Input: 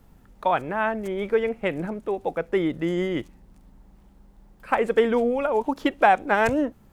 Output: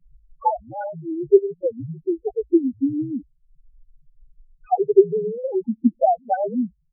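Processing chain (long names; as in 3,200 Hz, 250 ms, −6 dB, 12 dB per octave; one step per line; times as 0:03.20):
transient designer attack +10 dB, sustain −10 dB
in parallel at −11 dB: sample-and-hold swept by an LFO 35×, swing 160% 0.58 Hz
on the sum: notch filter 1,400 Hz, Q 14
frequency shifter −54 Hz
spectral peaks only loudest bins 2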